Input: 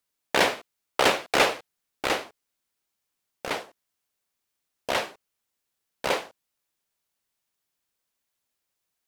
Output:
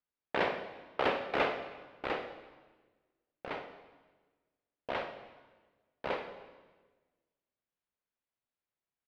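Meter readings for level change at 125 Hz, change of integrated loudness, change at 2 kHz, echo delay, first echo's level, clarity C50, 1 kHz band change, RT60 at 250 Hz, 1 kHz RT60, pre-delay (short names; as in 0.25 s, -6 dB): -7.0 dB, -10.0 dB, -10.0 dB, 63 ms, -12.5 dB, 7.5 dB, -8.5 dB, 1.6 s, 1.3 s, 36 ms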